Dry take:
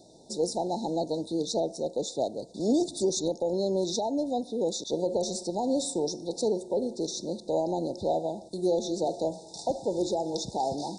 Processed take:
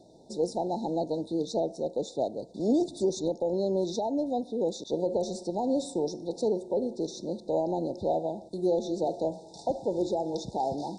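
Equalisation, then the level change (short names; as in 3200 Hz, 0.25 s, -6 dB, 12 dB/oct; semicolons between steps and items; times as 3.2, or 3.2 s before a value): high shelf 3600 Hz -11.5 dB; 0.0 dB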